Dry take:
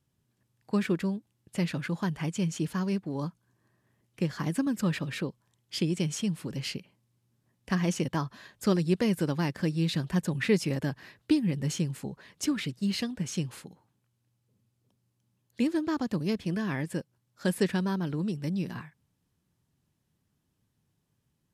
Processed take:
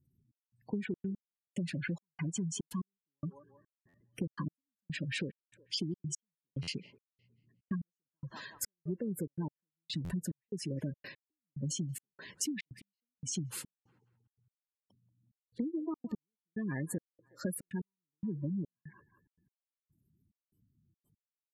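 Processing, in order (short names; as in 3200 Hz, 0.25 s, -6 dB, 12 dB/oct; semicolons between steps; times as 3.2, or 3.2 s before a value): high shelf 6700 Hz +11 dB; spectral gate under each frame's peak -15 dB strong; bell 2800 Hz +3.5 dB 0.27 oct; on a send: band-limited delay 0.182 s, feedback 36%, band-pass 910 Hz, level -17.5 dB; on the sum: compressor 12:1, threshold -35 dBFS, peak gain reduction 16.5 dB; step gate "xxx..xxxx.x....x" 144 bpm -60 dB; stuck buffer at 3.88/6.62/10.04/17.65, samples 512, times 4; gain +2.5 dB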